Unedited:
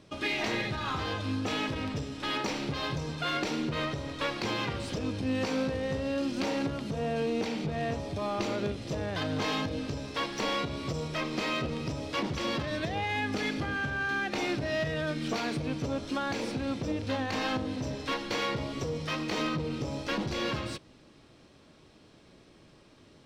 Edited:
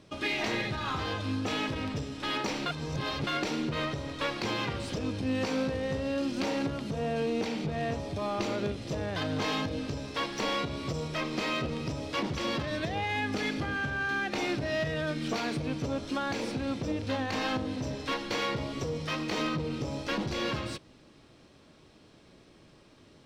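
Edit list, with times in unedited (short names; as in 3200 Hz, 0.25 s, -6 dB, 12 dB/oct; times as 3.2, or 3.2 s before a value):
2.66–3.27 reverse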